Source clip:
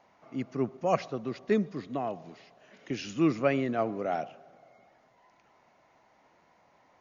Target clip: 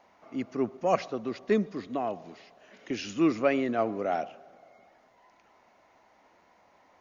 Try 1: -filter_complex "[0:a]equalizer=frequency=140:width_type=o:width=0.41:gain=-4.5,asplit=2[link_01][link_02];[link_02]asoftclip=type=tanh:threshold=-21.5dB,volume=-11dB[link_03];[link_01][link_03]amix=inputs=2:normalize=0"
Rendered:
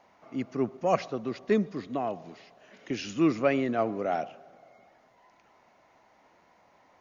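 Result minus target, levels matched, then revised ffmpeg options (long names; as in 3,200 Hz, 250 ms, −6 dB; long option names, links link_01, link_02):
125 Hz band +3.0 dB
-filter_complex "[0:a]equalizer=frequency=140:width_type=o:width=0.41:gain=-11.5,asplit=2[link_01][link_02];[link_02]asoftclip=type=tanh:threshold=-21.5dB,volume=-11dB[link_03];[link_01][link_03]amix=inputs=2:normalize=0"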